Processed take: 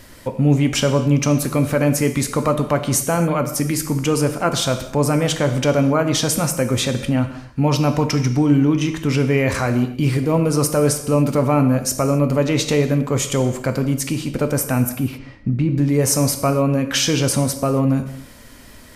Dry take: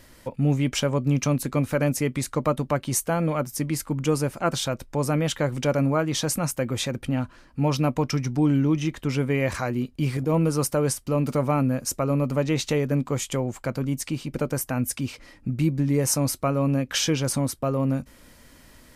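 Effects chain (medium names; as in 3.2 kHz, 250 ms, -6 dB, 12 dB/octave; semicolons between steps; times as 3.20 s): in parallel at 0 dB: peak limiter -19.5 dBFS, peak gain reduction 9 dB; 14.89–15.78 s: on the sum: tape spacing loss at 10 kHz 24 dB; gated-style reverb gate 300 ms falling, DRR 7 dB; trim +1.5 dB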